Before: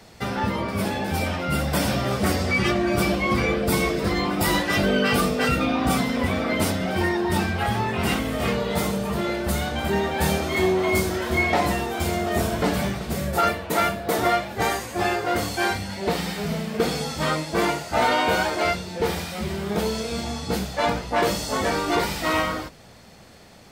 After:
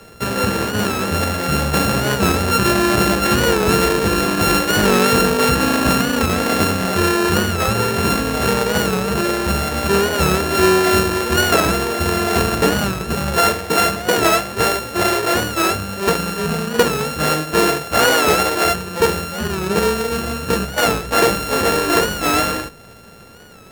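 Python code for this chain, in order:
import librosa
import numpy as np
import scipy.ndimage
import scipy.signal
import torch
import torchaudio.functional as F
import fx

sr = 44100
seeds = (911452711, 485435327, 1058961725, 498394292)

y = np.r_[np.sort(x[:len(x) // 32 * 32].reshape(-1, 32), axis=1).ravel(), x[len(x) // 32 * 32:]]
y = fx.small_body(y, sr, hz=(440.0, 1700.0), ring_ms=20, db=7)
y = fx.record_warp(y, sr, rpm=45.0, depth_cents=100.0)
y = F.gain(torch.from_numpy(y), 5.0).numpy()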